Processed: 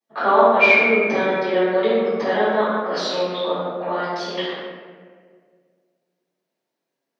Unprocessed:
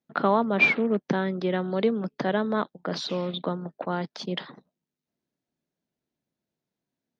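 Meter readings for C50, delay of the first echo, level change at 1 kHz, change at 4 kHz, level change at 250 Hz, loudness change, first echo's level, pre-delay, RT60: −3.5 dB, no echo audible, +9.5 dB, +7.0 dB, +1.5 dB, +7.5 dB, no echo audible, 3 ms, 1.8 s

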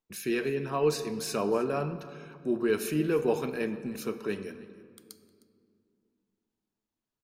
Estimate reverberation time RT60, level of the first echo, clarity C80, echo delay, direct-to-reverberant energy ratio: 2.3 s, −20.0 dB, 12.5 dB, 309 ms, 10.5 dB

